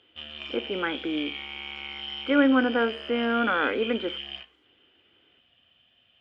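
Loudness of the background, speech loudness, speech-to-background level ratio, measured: −35.5 LKFS, −26.0 LKFS, 9.5 dB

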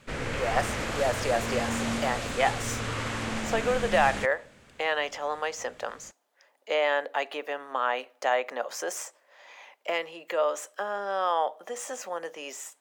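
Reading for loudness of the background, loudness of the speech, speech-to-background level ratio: −32.0 LKFS, −30.0 LKFS, 2.0 dB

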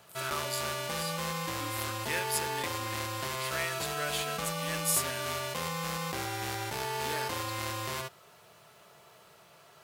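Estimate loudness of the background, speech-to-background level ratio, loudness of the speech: −34.0 LKFS, −2.0 dB, −36.0 LKFS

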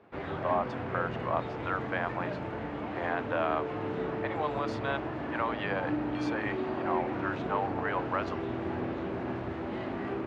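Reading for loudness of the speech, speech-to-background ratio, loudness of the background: −35.0 LKFS, 0.5 dB, −35.5 LKFS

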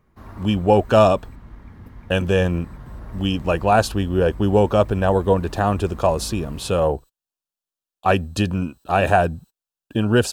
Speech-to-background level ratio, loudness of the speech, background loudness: 20.0 dB, −20.0 LKFS, −40.0 LKFS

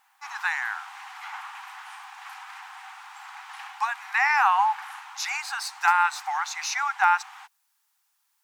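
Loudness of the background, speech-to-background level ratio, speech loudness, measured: −42.0 LKFS, 17.0 dB, −25.0 LKFS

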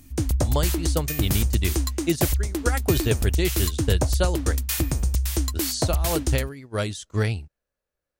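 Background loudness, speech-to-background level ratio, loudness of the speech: −25.0 LKFS, −3.0 dB, −28.0 LKFS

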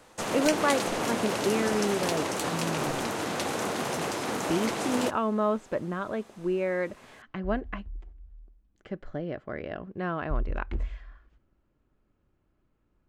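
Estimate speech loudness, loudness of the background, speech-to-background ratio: −31.5 LKFS, −30.0 LKFS, −1.5 dB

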